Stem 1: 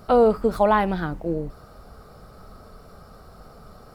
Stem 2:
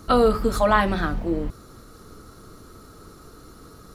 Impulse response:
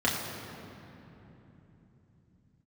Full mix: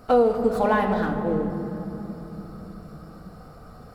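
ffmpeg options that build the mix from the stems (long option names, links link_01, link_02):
-filter_complex "[0:a]volume=-4.5dB,asplit=2[link_01][link_02];[link_02]volume=-12dB[link_03];[1:a]aeval=exprs='sgn(val(0))*max(abs(val(0))-0.0251,0)':channel_layout=same,volume=-11.5dB[link_04];[2:a]atrim=start_sample=2205[link_05];[link_03][link_05]afir=irnorm=-1:irlink=0[link_06];[link_01][link_04][link_06]amix=inputs=3:normalize=0,alimiter=limit=-10.5dB:level=0:latency=1:release=238"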